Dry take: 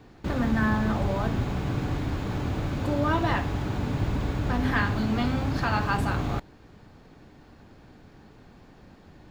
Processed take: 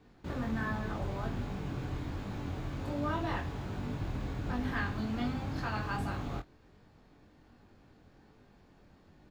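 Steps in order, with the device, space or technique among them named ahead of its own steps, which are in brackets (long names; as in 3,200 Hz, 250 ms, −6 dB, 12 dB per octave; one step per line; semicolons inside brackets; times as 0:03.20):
double-tracked vocal (double-tracking delay 25 ms −13 dB; chorus effect 1.3 Hz, delay 20 ms, depth 3.3 ms)
level −6.5 dB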